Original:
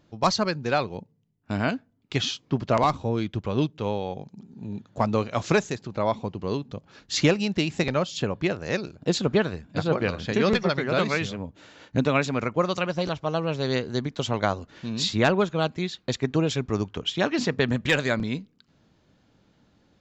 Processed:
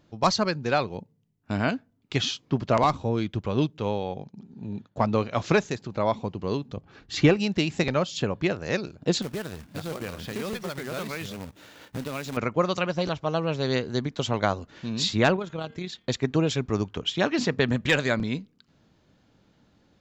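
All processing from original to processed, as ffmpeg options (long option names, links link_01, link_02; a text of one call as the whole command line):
ffmpeg -i in.wav -filter_complex "[0:a]asettb=1/sr,asplit=3[link_01][link_02][link_03];[link_01]atrim=end=4.034[link_04];[link_02]atrim=start=4.03:end=5.71,asetpts=PTS-STARTPTS,afade=type=in:duration=0.004:curve=qsin,afade=type=out:start_time=1.676:duration=0.004:curve=qsin,lowpass=5700,agate=range=-33dB:threshold=-50dB:ratio=3:release=100:detection=peak[link_05];[link_03]atrim=start=5.706[link_06];[link_04][link_05]acrossfade=duration=0.004:curve1=hsin:curve2=qsin[link_07];[link_07][link_06]acrossfade=duration=0.004:curve1=qsin:curve2=hsin,asettb=1/sr,asplit=3[link_08][link_09][link_10];[link_08]atrim=end=6.774[link_11];[link_09]atrim=start=6.77:end=7.37,asetpts=PTS-STARTPTS,afade=type=in:duration=0.004:curve=qsin,afade=type=out:start_time=0.596:duration=0.004:curve=qsin,bass=frequency=250:gain=5,treble=frequency=4000:gain=-10,aecho=1:1:2.6:0.32,atrim=end_sample=26460[link_12];[link_10]atrim=start=7.366[link_13];[link_11][link_12]acrossfade=duration=0.004:curve1=hsin:curve2=qsin[link_14];[link_14][link_13]acrossfade=duration=0.004:curve1=qsin:curve2=hsin,asettb=1/sr,asplit=3[link_15][link_16][link_17];[link_15]atrim=end=9.224[link_18];[link_16]atrim=start=9.22:end=12.37,asetpts=PTS-STARTPTS,afade=type=in:duration=0.004:curve=qsin,afade=type=out:start_time=3.146:duration=0.004:curve=qsin,acompressor=threshold=-34dB:ratio=2.5:attack=3.2:release=140:knee=1:detection=peak,acrusher=bits=2:mode=log:mix=0:aa=0.000001[link_19];[link_17]atrim=start=12.366[link_20];[link_18][link_19]acrossfade=duration=0.004:curve1=hsin:curve2=qsin[link_21];[link_21][link_20]acrossfade=duration=0.004:curve1=qsin:curve2=hsin,asettb=1/sr,asplit=3[link_22][link_23][link_24];[link_22]atrim=end=15.364[link_25];[link_23]atrim=start=15.36:end=16.07,asetpts=PTS-STARTPTS,afade=type=in:duration=0.004:curve=qsin,afade=type=out:start_time=0.706:duration=0.004:curve=qsin,bandreject=frequency=229:width_type=h:width=4,bandreject=frequency=458:width_type=h:width=4,bandreject=frequency=687:width_type=h:width=4,bandreject=frequency=916:width_type=h:width=4,bandreject=frequency=1145:width_type=h:width=4,bandreject=frequency=1374:width_type=h:width=4,bandreject=frequency=1603:width_type=h:width=4,bandreject=frequency=1832:width_type=h:width=4,bandreject=frequency=2061:width_type=h:width=4,bandreject=frequency=2290:width_type=h:width=4,bandreject=frequency=2519:width_type=h:width=4,bandreject=frequency=2748:width_type=h:width=4,bandreject=frequency=2977:width_type=h:width=4,bandreject=frequency=3206:width_type=h:width=4,bandreject=frequency=3435:width_type=h:width=4,acompressor=threshold=-28dB:ratio=3:attack=3.2:release=140:knee=1:detection=peak,tremolo=f=35:d=0.4[link_26];[link_24]atrim=start=16.066[link_27];[link_25][link_26]acrossfade=duration=0.004:curve1=hsin:curve2=qsin[link_28];[link_28][link_27]acrossfade=duration=0.004:curve1=qsin:curve2=hsin" out.wav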